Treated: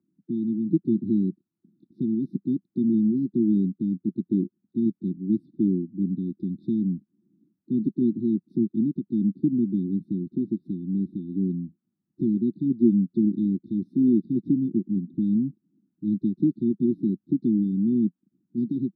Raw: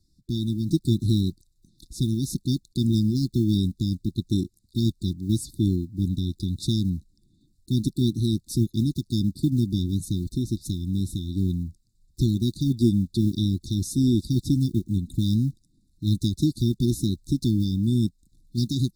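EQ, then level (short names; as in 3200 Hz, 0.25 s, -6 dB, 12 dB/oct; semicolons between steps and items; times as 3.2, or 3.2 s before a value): elliptic band-pass 190–1500 Hz, stop band 60 dB; +3.0 dB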